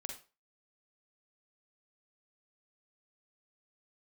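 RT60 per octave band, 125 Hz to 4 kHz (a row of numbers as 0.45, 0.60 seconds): 0.25, 0.30, 0.35, 0.35, 0.30, 0.30 seconds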